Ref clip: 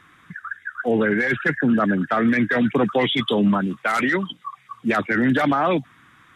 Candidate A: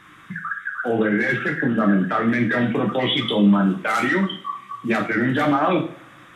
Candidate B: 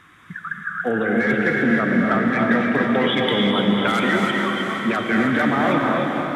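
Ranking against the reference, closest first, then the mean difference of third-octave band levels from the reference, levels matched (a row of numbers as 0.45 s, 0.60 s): A, B; 4.5 dB, 9.0 dB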